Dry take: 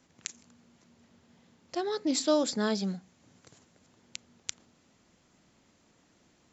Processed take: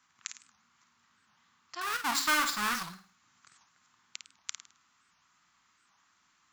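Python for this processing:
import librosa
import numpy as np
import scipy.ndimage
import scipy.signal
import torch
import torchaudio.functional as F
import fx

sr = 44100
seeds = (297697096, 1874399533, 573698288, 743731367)

p1 = fx.halfwave_hold(x, sr, at=(1.81, 2.84))
p2 = fx.low_shelf_res(p1, sr, hz=780.0, db=-13.5, q=3.0)
p3 = p2 + fx.room_flutter(p2, sr, wall_m=9.1, rt60_s=0.42, dry=0)
p4 = fx.record_warp(p3, sr, rpm=78.0, depth_cents=250.0)
y = p4 * librosa.db_to_amplitude(-3.0)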